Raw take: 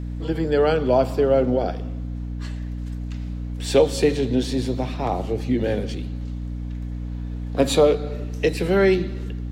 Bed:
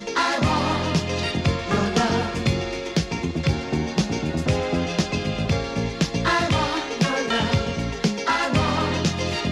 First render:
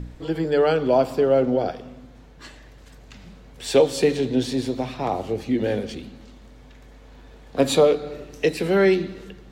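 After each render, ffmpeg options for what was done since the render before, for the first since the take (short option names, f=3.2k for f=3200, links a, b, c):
-af "bandreject=f=60:t=h:w=4,bandreject=f=120:t=h:w=4,bandreject=f=180:t=h:w=4,bandreject=f=240:t=h:w=4,bandreject=f=300:t=h:w=4"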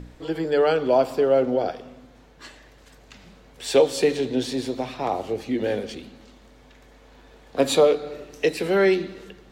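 -af "bass=f=250:g=-7,treble=f=4k:g=0"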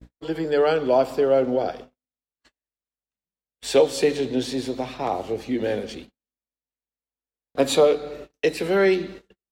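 -af "agate=range=-51dB:threshold=-38dB:ratio=16:detection=peak"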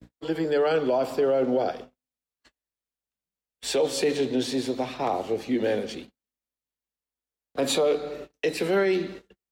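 -filter_complex "[0:a]acrossover=split=110|710|1700[a][b][c][d];[a]acompressor=threshold=-58dB:ratio=6[e];[e][b][c][d]amix=inputs=4:normalize=0,alimiter=limit=-15.5dB:level=0:latency=1:release=17"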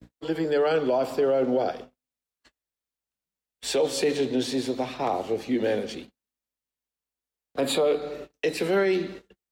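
-filter_complex "[0:a]asettb=1/sr,asplit=3[a][b][c];[a]atrim=end=7.614[d];[b]atrim=start=7.61:end=8.02,asetpts=PTS-STARTPTS,afade=t=in:d=0.004:c=qsin,afade=t=out:st=0.406:d=0.004:c=qsin,equalizer=f=5.9k:t=o:w=0.31:g=-14[e];[c]atrim=start=8.016[f];[d][e]acrossfade=d=0.004:c1=hsin:c2=qsin[g];[g][f]acrossfade=d=0.004:c1=qsin:c2=hsin"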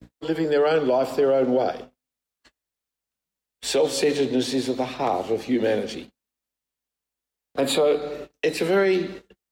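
-af "volume=3dB"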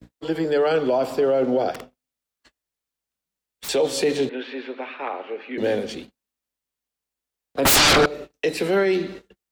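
-filter_complex "[0:a]asettb=1/sr,asplit=3[a][b][c];[a]atrim=end=1.744[d];[b]atrim=start=1.74:end=3.69,asetpts=PTS-STARTPTS,afade=t=in:d=0.004:c=qsin,afade=t=out:st=1.946:d=0.004:c=qsin,aeval=exprs='(mod(23.7*val(0)+1,2)-1)/23.7':c=same[e];[c]atrim=start=3.686[f];[d][e]acrossfade=d=0.004:c1=hsin:c2=qsin[g];[g][f]acrossfade=d=0.004:c1=qsin:c2=hsin,asettb=1/sr,asplit=3[h][i][j];[h]atrim=end=4.294[k];[i]atrim=start=4.29:end=5.58,asetpts=PTS-STARTPTS,afade=t=in:d=0.004:c=qsin,afade=t=out:st=1.286:d=0.004:c=qsin,highpass=f=330:w=0.5412,highpass=f=330:w=1.3066,equalizer=f=340:t=q:w=4:g=-8,equalizer=f=480:t=q:w=4:g=-5,equalizer=f=700:t=q:w=4:g=-10,equalizer=f=1k:t=q:w=4:g=-3,equalizer=f=1.5k:t=q:w=4:g=6,equalizer=f=2.5k:t=q:w=4:g=4,lowpass=f=2.8k:w=0.5412,lowpass=f=2.8k:w=1.3066[l];[j]atrim=start=5.576[m];[k][l]acrossfade=d=0.004:c1=hsin:c2=qsin[n];[n][m]acrossfade=d=0.004:c1=qsin:c2=hsin,asettb=1/sr,asplit=3[o][p][q];[o]atrim=end=7.654[r];[p]atrim=start=7.65:end=8.06,asetpts=PTS-STARTPTS,afade=t=in:d=0.004:c=qsin,afade=t=out:st=0.406:d=0.004:c=qsin,aeval=exprs='0.251*sin(PI/2*7.94*val(0)/0.251)':c=same[s];[q]atrim=start=8.056[t];[r][s]acrossfade=d=0.004:c1=hsin:c2=qsin[u];[u][t]acrossfade=d=0.004:c1=qsin:c2=hsin"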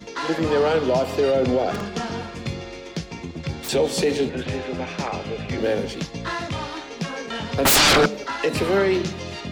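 -filter_complex "[1:a]volume=-7.5dB[a];[0:a][a]amix=inputs=2:normalize=0"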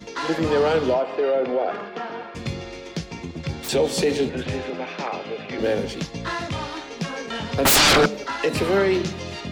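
-filter_complex "[0:a]asettb=1/sr,asplit=3[a][b][c];[a]atrim=end=0.944[d];[b]atrim=start=0.94:end=2.35,asetpts=PTS-STARTPTS,afade=t=in:d=0.004:c=qsin,afade=t=out:st=1.406:d=0.004:c=qsin,highpass=380,lowpass=2.3k[e];[c]atrim=start=2.346[f];[d][e]acrossfade=d=0.004:c1=hsin:c2=qsin[g];[g][f]acrossfade=d=0.004:c1=qsin:c2=hsin,asettb=1/sr,asplit=3[h][i][j];[h]atrim=end=4.704[k];[i]atrim=start=4.7:end=5.59,asetpts=PTS-STARTPTS,afade=t=in:d=0.004:c=qsin,afade=t=out:st=0.886:d=0.004:c=qsin,highpass=260,lowpass=4.5k[l];[j]atrim=start=5.586[m];[k][l]acrossfade=d=0.004:c1=hsin:c2=qsin[n];[n][m]acrossfade=d=0.004:c1=qsin:c2=hsin"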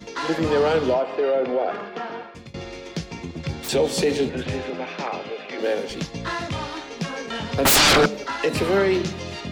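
-filter_complex "[0:a]asettb=1/sr,asplit=3[a][b][c];[a]atrim=end=5.294[d];[b]atrim=start=5.29:end=5.9,asetpts=PTS-STARTPTS,afade=t=in:d=0.004:c=qsin,afade=t=out:st=0.606:d=0.004:c=qsin,highpass=330[e];[c]atrim=start=5.896[f];[d][e]acrossfade=d=0.004:c1=hsin:c2=qsin[g];[g][f]acrossfade=d=0.004:c1=qsin:c2=hsin,asplit=2[h][i];[h]atrim=end=2.54,asetpts=PTS-STARTPTS,afade=t=out:st=2.14:d=0.4:silence=0.0668344[j];[i]atrim=start=2.54,asetpts=PTS-STARTPTS,afade=t=in:d=0.004:c=hsin:silence=0.0668344[k];[j][k]concat=n=2:v=0:a=1"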